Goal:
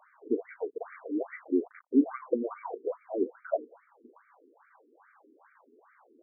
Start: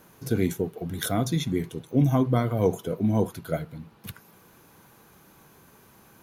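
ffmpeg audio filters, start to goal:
ffmpeg -i in.wav -filter_complex "[0:a]asettb=1/sr,asplit=3[link_01][link_02][link_03];[link_01]atrim=end=0.704[link_04];[link_02]atrim=start=0.7:end=2.11,asetpts=PTS-STARTPTS,afade=type=in:duration=0.004:curve=qsin,afade=type=out:start_time=1.406:duration=0.004:curve=qsin,acrusher=bits=5:mix=0:aa=0.5[link_05];[link_03]atrim=start=2.106[link_06];[link_04][link_05]acrossfade=duration=0.004:curve1=hsin:curve2=qsin[link_07];[link_07][link_06]acrossfade=duration=0.004:curve1=qsin:curve2=hsin,afftfilt=real='re*between(b*sr/1024,310*pow(1700/310,0.5+0.5*sin(2*PI*2.4*pts/sr))/1.41,310*pow(1700/310,0.5+0.5*sin(2*PI*2.4*pts/sr))*1.41)':imag='im*between(b*sr/1024,310*pow(1700/310,0.5+0.5*sin(2*PI*2.4*pts/sr))/1.41,310*pow(1700/310,0.5+0.5*sin(2*PI*2.4*pts/sr))*1.41)':win_size=1024:overlap=0.75,volume=2dB" out.wav

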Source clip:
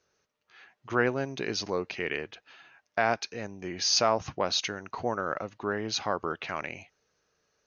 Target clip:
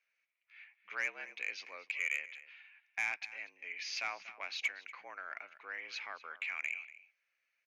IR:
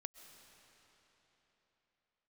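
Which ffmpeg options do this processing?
-filter_complex "[0:a]bandpass=frequency=2200:width_type=q:width=8.5:csg=0,afreqshift=77,asoftclip=type=tanh:threshold=-32dB,asplit=2[link_01][link_02];[link_02]adelay=239.1,volume=-16dB,highshelf=frequency=4000:gain=-5.38[link_03];[link_01][link_03]amix=inputs=2:normalize=0,volume=7.5dB"

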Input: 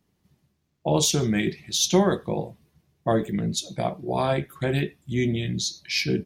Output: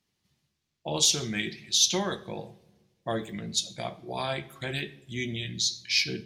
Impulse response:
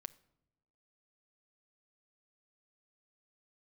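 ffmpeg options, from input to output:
-filter_complex "[0:a]equalizer=frequency=4300:width=0.34:gain=13.5[link_01];[1:a]atrim=start_sample=2205,asetrate=32634,aresample=44100[link_02];[link_01][link_02]afir=irnorm=-1:irlink=0,volume=-8dB"

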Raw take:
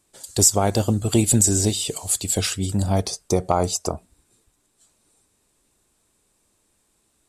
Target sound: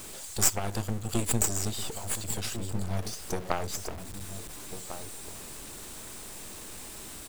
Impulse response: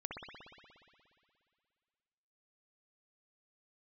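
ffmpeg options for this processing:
-filter_complex "[0:a]aeval=exprs='val(0)+0.5*0.1*sgn(val(0))':channel_layout=same,aeval=exprs='0.75*(cos(1*acos(clip(val(0)/0.75,-1,1)))-cos(1*PI/2))+0.188*(cos(3*acos(clip(val(0)/0.75,-1,1)))-cos(3*PI/2))+0.119*(cos(4*acos(clip(val(0)/0.75,-1,1)))-cos(4*PI/2))':channel_layout=same,asplit=2[link_01][link_02];[link_02]adelay=1399,volume=-10dB,highshelf=frequency=4000:gain=-31.5[link_03];[link_01][link_03]amix=inputs=2:normalize=0,volume=-5.5dB"

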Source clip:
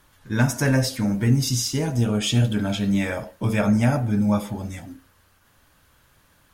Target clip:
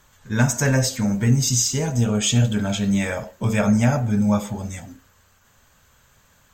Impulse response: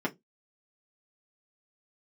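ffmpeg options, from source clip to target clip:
-af "superequalizer=6b=0.447:15b=2.24:16b=0.251,volume=1.5dB"

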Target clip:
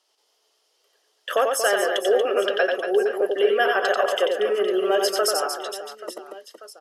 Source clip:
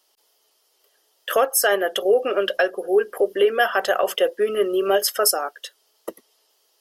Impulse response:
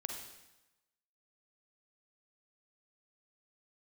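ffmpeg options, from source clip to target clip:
-af "highpass=260,lowpass=7800,aecho=1:1:90|234|464.4|833|1423:0.631|0.398|0.251|0.158|0.1,volume=-2.5dB"

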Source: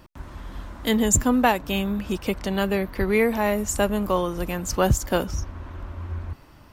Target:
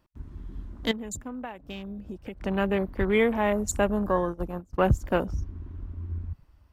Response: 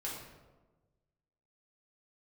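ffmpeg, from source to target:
-filter_complex "[0:a]afwtdn=0.0224,asettb=1/sr,asplit=3[link_01][link_02][link_03];[link_01]atrim=end=0.914[link_04];[link_02]atrim=start=0.91:end=2.41,asetpts=PTS-STARTPTS,afade=type=in:duration=0.004:curve=qsin,afade=type=out:start_time=1.496:duration=0.004:curve=qsin,acompressor=threshold=-34dB:ratio=5[link_05];[link_03]atrim=start=2.406[link_06];[link_04][link_05]acrossfade=duration=0.004:curve1=hsin:curve2=qsin[link_07];[link_07][link_06]acrossfade=duration=0.004:curve1=qsin:curve2=hsin,asplit=3[link_08][link_09][link_10];[link_08]afade=type=out:start_time=4.25:duration=0.02[link_11];[link_09]agate=range=-24dB:threshold=-27dB:ratio=16:detection=peak,afade=type=in:start_time=4.25:duration=0.02,afade=type=out:start_time=4.86:duration=0.02[link_12];[link_10]afade=type=in:start_time=4.86:duration=0.02[link_13];[link_11][link_12][link_13]amix=inputs=3:normalize=0,volume=-2dB"

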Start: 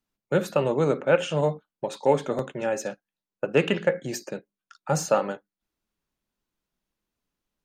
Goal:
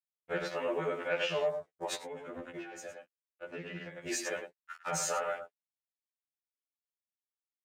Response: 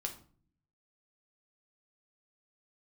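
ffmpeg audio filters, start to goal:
-filter_complex "[0:a]bandreject=frequency=840:width=20,acrusher=bits=7:mix=0:aa=0.000001,highshelf=frequency=6900:gain=-6,acompressor=threshold=-36dB:ratio=3,equalizer=frequency=125:width_type=o:width=1:gain=-9,equalizer=frequency=250:width_type=o:width=1:gain=-8,equalizer=frequency=2000:width_type=o:width=1:gain=9,equalizer=frequency=8000:width_type=o:width=1:gain=9,asplit=2[link_01][link_02];[link_02]adelay=105,volume=-9dB,highshelf=frequency=4000:gain=-2.36[link_03];[link_01][link_03]amix=inputs=2:normalize=0,alimiter=level_in=4dB:limit=-24dB:level=0:latency=1:release=24,volume=-4dB,afwtdn=0.00282,agate=range=-9dB:threshold=-49dB:ratio=16:detection=peak,asettb=1/sr,asplit=3[link_04][link_05][link_06];[link_04]atrim=end=1.954[link_07];[link_05]atrim=start=1.95:end=4.07,asetpts=PTS-STARTPTS,afade=type=in:duration=0.004:curve=qsin,afade=type=out:start_time=2.116:duration=0.004:curve=qsin,acrossover=split=290[link_08][link_09];[link_09]acompressor=threshold=-51dB:ratio=4[link_10];[link_08][link_10]amix=inputs=2:normalize=0[link_11];[link_06]atrim=start=4.066[link_12];[link_07][link_11]acrossfade=duration=0.004:curve1=hsin:curve2=qsin[link_13];[link_13][link_12]acrossfade=duration=0.004:curve1=qsin:curve2=hsin,afftfilt=real='re*2*eq(mod(b,4),0)':imag='im*2*eq(mod(b,4),0)':win_size=2048:overlap=0.75,volume=8dB"

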